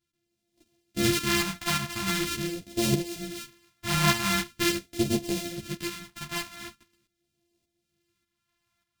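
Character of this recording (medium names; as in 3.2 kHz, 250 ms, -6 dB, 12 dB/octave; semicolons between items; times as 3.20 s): a buzz of ramps at a fixed pitch in blocks of 128 samples; phasing stages 2, 0.43 Hz, lowest notch 430–1200 Hz; tremolo saw up 1.7 Hz, depth 60%; a shimmering, thickened sound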